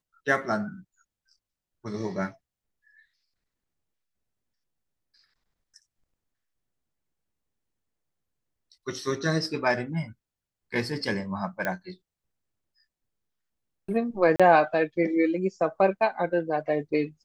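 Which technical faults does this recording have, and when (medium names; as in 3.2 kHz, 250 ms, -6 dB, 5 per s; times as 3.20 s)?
11.65 s: pop -15 dBFS
14.36–14.40 s: dropout 36 ms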